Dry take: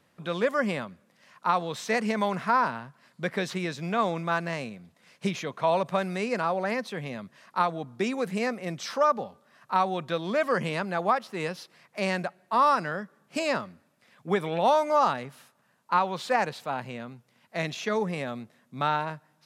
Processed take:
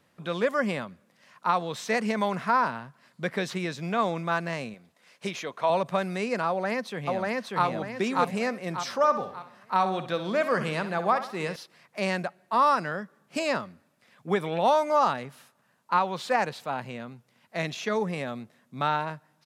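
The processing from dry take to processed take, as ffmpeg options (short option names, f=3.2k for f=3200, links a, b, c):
-filter_complex "[0:a]asettb=1/sr,asplit=3[a][b][c];[a]atrim=end=4.744[d];[b]atrim=start=4.74:end=5.7,asetpts=PTS-STARTPTS,afade=t=in:d=0.004:c=qsin,afade=t=out:st=0.956:d=0.004:c=qsin,bass=f=250:g=-10,treble=f=4k:g=0[e];[c]atrim=start=5.696[f];[d][e]acrossfade=d=0.004:c1=hsin:c2=qsin[g];[g][f]acrossfade=d=0.004:c1=qsin:c2=hsin,asplit=2[h][i];[i]afade=t=in:st=6.48:d=0.01,afade=t=out:st=7.65:d=0.01,aecho=0:1:590|1180|1770|2360|2950:0.944061|0.377624|0.15105|0.0604199|0.024168[j];[h][j]amix=inputs=2:normalize=0,asettb=1/sr,asplit=3[k][l][m];[k]atrim=end=8.974[n];[l]atrim=start=8.97:end=11.56,asetpts=PTS-STARTPTS,afade=t=in:d=0.004:c=qsin,afade=t=out:st=2.586:d=0.004:c=qsin,aecho=1:1:63|126|189|252|315:0.282|0.13|0.0596|0.0274|0.0126,atrim=end_sample=114219[o];[m]atrim=start=11.556[p];[n][o]acrossfade=d=0.004:c1=hsin:c2=qsin[q];[q][p]acrossfade=d=0.004:c1=qsin:c2=hsin"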